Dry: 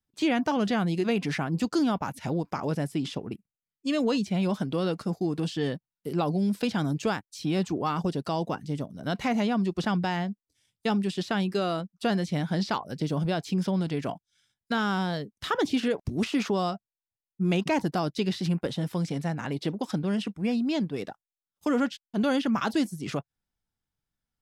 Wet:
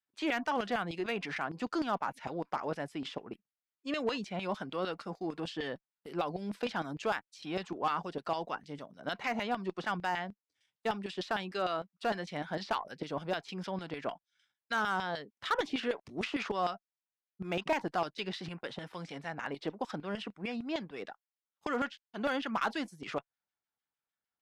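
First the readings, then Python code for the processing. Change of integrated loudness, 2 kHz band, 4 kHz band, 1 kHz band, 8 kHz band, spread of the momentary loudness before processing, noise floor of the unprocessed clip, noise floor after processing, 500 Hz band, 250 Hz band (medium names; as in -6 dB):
-7.5 dB, -2.0 dB, -5.5 dB, -2.5 dB, -10.5 dB, 7 LU, under -85 dBFS, under -85 dBFS, -6.0 dB, -12.5 dB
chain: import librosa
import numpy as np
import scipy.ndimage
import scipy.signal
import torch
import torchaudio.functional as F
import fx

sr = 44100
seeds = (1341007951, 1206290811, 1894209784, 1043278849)

y = fx.filter_lfo_bandpass(x, sr, shape='saw_down', hz=6.6, low_hz=730.0, high_hz=2600.0, q=0.84)
y = fx.cheby_harmonics(y, sr, harmonics=(4,), levels_db=(-34,), full_scale_db=-23.0)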